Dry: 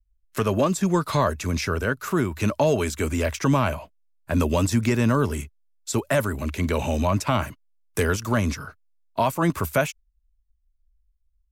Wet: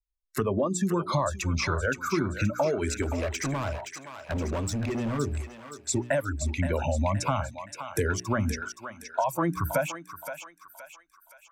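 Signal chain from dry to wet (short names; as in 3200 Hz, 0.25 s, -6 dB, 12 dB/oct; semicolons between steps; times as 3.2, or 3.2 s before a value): formant sharpening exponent 1.5; spectral noise reduction 22 dB; notches 60/120/180/240/300/360/420 Hz; compressor, threshold -24 dBFS, peak gain reduction 8 dB; 3.02–5.19 hard clip -28 dBFS, distortion -13 dB; thinning echo 0.521 s, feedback 50%, high-pass 870 Hz, level -7 dB; gain +1.5 dB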